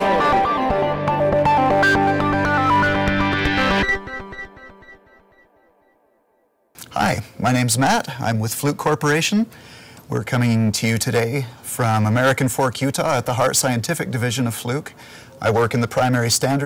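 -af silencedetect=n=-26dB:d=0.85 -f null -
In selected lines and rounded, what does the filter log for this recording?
silence_start: 4.45
silence_end: 6.79 | silence_duration: 2.34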